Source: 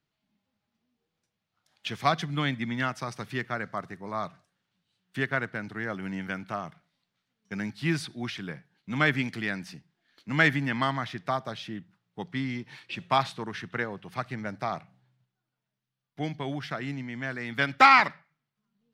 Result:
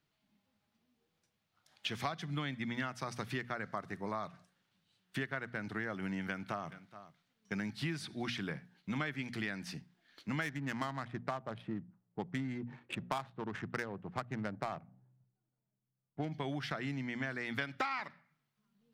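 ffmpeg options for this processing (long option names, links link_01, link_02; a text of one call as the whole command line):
ffmpeg -i in.wav -filter_complex "[0:a]asettb=1/sr,asplit=3[link_01][link_02][link_03];[link_01]atrim=end=6.204[link_04];[link_02]atrim=start=6.2:end=8.29,asetpts=PTS-STARTPTS,afade=type=in:duration=0.004:curve=qsin,afade=type=out:start_time=2.086:duration=0.004:curve=qsin,aecho=1:1:422:0.0891,atrim=end_sample=92169[link_05];[link_03]atrim=start=8.286[link_06];[link_04][link_05]acrossfade=duration=0.004:curve1=hsin:curve2=qsin[link_07];[link_07][link_06]acrossfade=duration=0.004:curve1=qsin:curve2=hsin,asplit=3[link_08][link_09][link_10];[link_08]afade=type=out:start_time=10.41:duration=0.02[link_11];[link_09]adynamicsmooth=sensitivity=3.5:basefreq=710,afade=type=in:start_time=10.41:duration=0.02,afade=type=out:start_time=16.31:duration=0.02[link_12];[link_10]afade=type=in:start_time=16.31:duration=0.02[link_13];[link_11][link_12][link_13]amix=inputs=3:normalize=0,bandreject=frequency=60:width_type=h:width=6,bandreject=frequency=120:width_type=h:width=6,bandreject=frequency=180:width_type=h:width=6,bandreject=frequency=240:width_type=h:width=6,acompressor=threshold=-36dB:ratio=8,volume=1.5dB" out.wav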